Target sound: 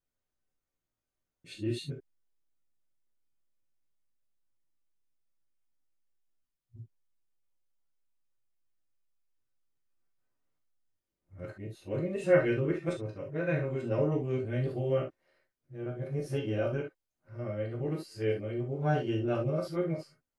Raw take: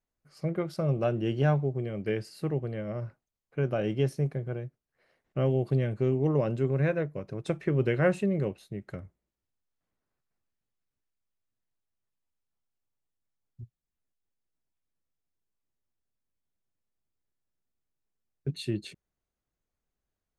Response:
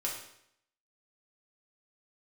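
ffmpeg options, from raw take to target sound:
-filter_complex "[0:a]areverse[link_01];[1:a]atrim=start_sample=2205,atrim=end_sample=3528[link_02];[link_01][link_02]afir=irnorm=-1:irlink=0,volume=-4.5dB"

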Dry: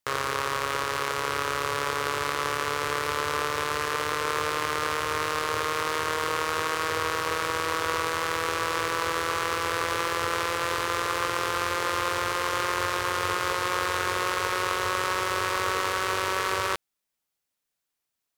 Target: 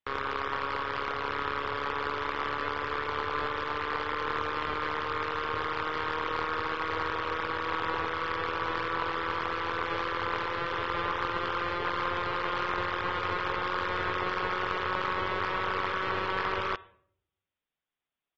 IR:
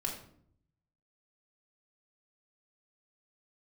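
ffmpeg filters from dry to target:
-filter_complex "[0:a]aresample=8000,aresample=44100,asplit=2[link_01][link_02];[1:a]atrim=start_sample=2205,adelay=63[link_03];[link_02][link_03]afir=irnorm=-1:irlink=0,volume=-23dB[link_04];[link_01][link_04]amix=inputs=2:normalize=0,aeval=exprs='(tanh(7.08*val(0)+0.65)-tanh(0.65))/7.08':channel_layout=same" -ar 44100 -c:a aac -b:a 24k

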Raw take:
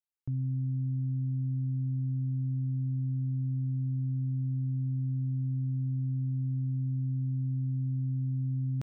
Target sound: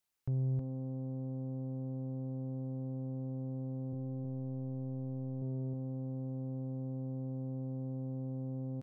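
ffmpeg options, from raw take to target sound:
ffmpeg -i in.wav -filter_complex "[0:a]asettb=1/sr,asplit=3[link_01][link_02][link_03];[link_01]atrim=end=3.924[link_04];[link_02]atrim=start=3.92:end=5.42,asetpts=PTS-STARTPTS,afade=type=in:duration=0.004:curve=qsin,afade=type=out:start_time=1.496:duration=0.004:curve=qsin,equalizer=frequency=93:width=3.8:gain=7.5[link_05];[link_03]atrim=start=5.416[link_06];[link_04][link_05]acrossfade=duration=0.004:curve1=hsin:curve2=qsin[link_07];[link_07][link_06]acrossfade=duration=0.004:curve1=qsin:curve2=hsin,alimiter=level_in=10dB:limit=-24dB:level=0:latency=1:release=23,volume=-10dB,asoftclip=type=tanh:threshold=-37.5dB,asplit=2[link_08][link_09];[link_09]aecho=0:1:317:0.668[link_10];[link_08][link_10]amix=inputs=2:normalize=0,volume=9dB" out.wav

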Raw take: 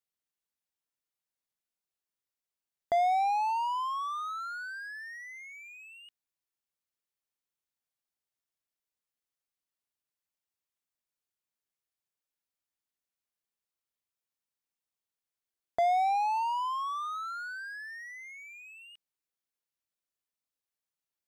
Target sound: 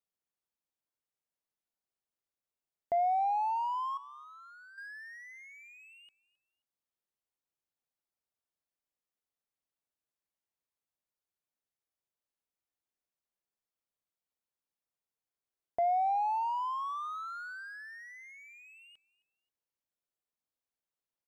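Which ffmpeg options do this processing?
ffmpeg -i in.wav -filter_complex "[0:a]lowshelf=frequency=300:gain=6,asoftclip=type=tanh:threshold=-23.5dB,asettb=1/sr,asplit=3[link_01][link_02][link_03];[link_01]atrim=end=3.974[link_04];[link_02]atrim=start=3.97:end=4.78,asetpts=PTS-STARTPTS,afade=type=in:duration=0.004:curve=qsin,afade=type=out:start_time=0.806:duration=0.004:curve=qsin,acrossover=split=320[link_05][link_06];[link_06]acompressor=threshold=-55dB:ratio=2.5[link_07];[link_05][link_07]amix=inputs=2:normalize=0[link_08];[link_03]atrim=start=4.776[link_09];[link_04][link_08]acrossfade=duration=0.004:curve1=hsin:curve2=qsin[link_10];[link_10][link_09]acrossfade=duration=0.004:curve1=qsin:curve2=hsin,equalizer=frequency=650:width=0.56:gain=6.5,aecho=1:1:266|532:0.0794|0.023,volume=-7dB" out.wav

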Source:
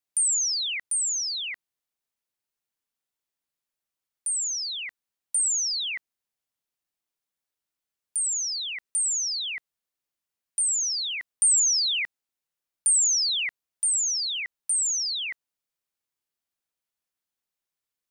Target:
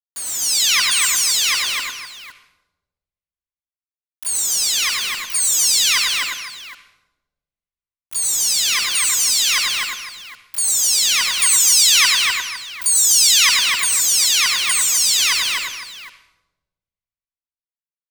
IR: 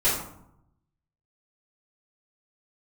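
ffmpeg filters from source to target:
-filter_complex "[0:a]asplit=4[link_01][link_02][link_03][link_04];[link_02]asetrate=22050,aresample=44100,atempo=2,volume=-18dB[link_05];[link_03]asetrate=33038,aresample=44100,atempo=1.33484,volume=-10dB[link_06];[link_04]asetrate=88200,aresample=44100,atempo=0.5,volume=-4dB[link_07];[link_01][link_05][link_06][link_07]amix=inputs=4:normalize=0,lowpass=frequency=3700:poles=1,equalizer=frequency=1100:width=2.9:gain=13,asplit=2[link_08][link_09];[link_09]aecho=0:1:251:0.708[link_10];[link_08][link_10]amix=inputs=2:normalize=0,dynaudnorm=framelen=130:gausssize=7:maxgain=12.5dB,lowshelf=frequency=190:gain=7,acrusher=bits=4:mix=0:aa=0.000001,aecho=1:1:99|507:0.631|0.211,asplit=2[link_11][link_12];[1:a]atrim=start_sample=2205,asetrate=26460,aresample=44100,adelay=56[link_13];[link_12][link_13]afir=irnorm=-1:irlink=0,volume=-27dB[link_14];[link_11][link_14]amix=inputs=2:normalize=0,volume=-1dB"

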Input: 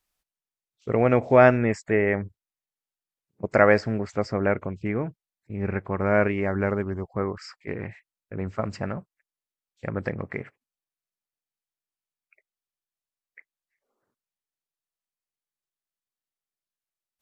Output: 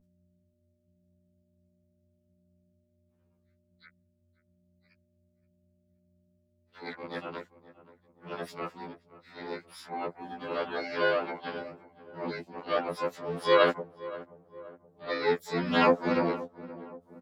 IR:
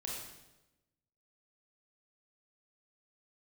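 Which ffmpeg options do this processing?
-filter_complex "[0:a]areverse,highpass=frequency=230:width=0.5412,highpass=frequency=230:width=1.3066,aeval=exprs='val(0)+0.00112*(sin(2*PI*60*n/s)+sin(2*PI*2*60*n/s)/2+sin(2*PI*3*60*n/s)/3+sin(2*PI*4*60*n/s)/4+sin(2*PI*5*60*n/s)/5)':channel_layout=same,asplit=4[link_01][link_02][link_03][link_04];[link_02]asetrate=29433,aresample=44100,atempo=1.49831,volume=-12dB[link_05];[link_03]asetrate=33038,aresample=44100,atempo=1.33484,volume=-4dB[link_06];[link_04]asetrate=88200,aresample=44100,atempo=0.5,volume=-5dB[link_07];[link_01][link_05][link_06][link_07]amix=inputs=4:normalize=0,asplit=2[link_08][link_09];[link_09]adelay=525,lowpass=frequency=1100:poles=1,volume=-16dB,asplit=2[link_10][link_11];[link_11]adelay=525,lowpass=frequency=1100:poles=1,volume=0.51,asplit=2[link_12][link_13];[link_13]adelay=525,lowpass=frequency=1100:poles=1,volume=0.51,asplit=2[link_14][link_15];[link_15]adelay=525,lowpass=frequency=1100:poles=1,volume=0.51,asplit=2[link_16][link_17];[link_17]adelay=525,lowpass=frequency=1100:poles=1,volume=0.51[link_18];[link_08][link_10][link_12][link_14][link_16][link_18]amix=inputs=6:normalize=0,afftfilt=real='re*2*eq(mod(b,4),0)':imag='im*2*eq(mod(b,4),0)':win_size=2048:overlap=0.75,volume=-5dB"

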